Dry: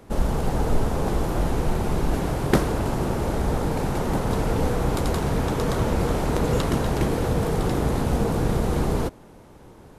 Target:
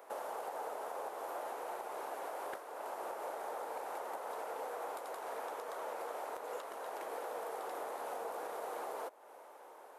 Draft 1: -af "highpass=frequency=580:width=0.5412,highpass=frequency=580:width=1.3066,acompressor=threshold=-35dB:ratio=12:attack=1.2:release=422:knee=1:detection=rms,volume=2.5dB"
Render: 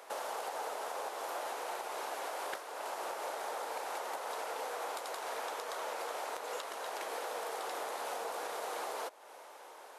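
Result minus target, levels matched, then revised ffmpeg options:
4,000 Hz band +8.5 dB
-af "highpass=frequency=580:width=0.5412,highpass=frequency=580:width=1.3066,acompressor=threshold=-35dB:ratio=12:attack=1.2:release=422:knee=1:detection=rms,equalizer=frequency=4600:width=0.41:gain=-12.5,volume=2.5dB"

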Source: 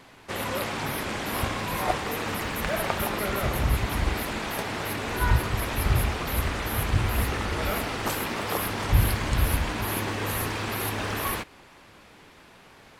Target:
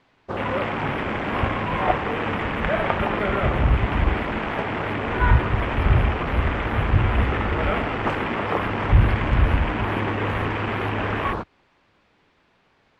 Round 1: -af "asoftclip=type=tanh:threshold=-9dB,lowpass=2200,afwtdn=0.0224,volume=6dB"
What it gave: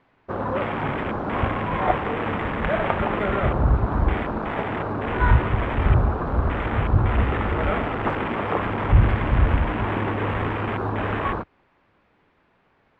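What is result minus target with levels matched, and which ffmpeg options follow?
4,000 Hz band −4.5 dB
-af "asoftclip=type=tanh:threshold=-9dB,lowpass=4500,afwtdn=0.0224,volume=6dB"

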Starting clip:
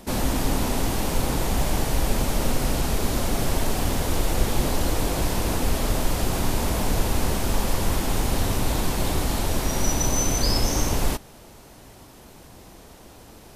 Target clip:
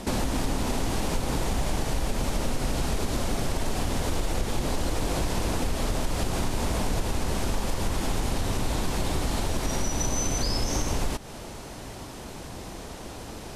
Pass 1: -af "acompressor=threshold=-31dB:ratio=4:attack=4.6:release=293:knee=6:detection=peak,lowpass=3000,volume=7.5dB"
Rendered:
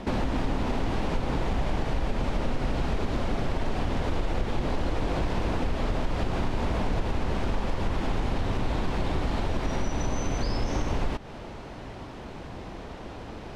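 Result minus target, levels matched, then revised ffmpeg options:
8,000 Hz band −13.0 dB
-af "acompressor=threshold=-31dB:ratio=4:attack=4.6:release=293:knee=6:detection=peak,lowpass=10000,volume=7.5dB"

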